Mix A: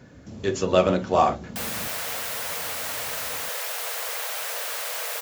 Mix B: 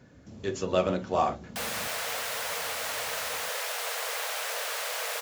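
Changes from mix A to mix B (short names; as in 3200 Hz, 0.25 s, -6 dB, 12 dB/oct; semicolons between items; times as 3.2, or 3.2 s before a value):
speech -6.5 dB; background: add high shelf 11000 Hz -9 dB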